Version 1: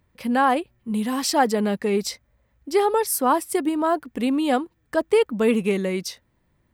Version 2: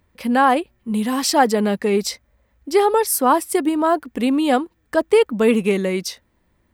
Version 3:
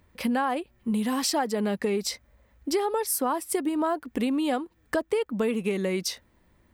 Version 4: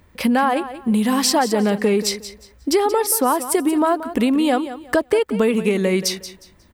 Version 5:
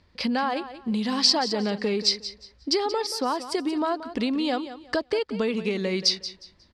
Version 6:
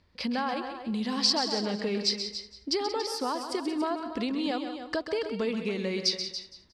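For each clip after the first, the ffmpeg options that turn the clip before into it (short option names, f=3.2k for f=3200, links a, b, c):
-af "equalizer=f=130:t=o:w=0.33:g=-11.5,volume=4dB"
-af "acompressor=threshold=-25dB:ratio=6,volume=1dB"
-af "aecho=1:1:180|360|540:0.224|0.056|0.014,volume=8.5dB"
-af "lowpass=f=4.7k:t=q:w=4.8,volume=-8.5dB"
-af "aecho=1:1:131.2|282.8:0.355|0.282,volume=-5dB"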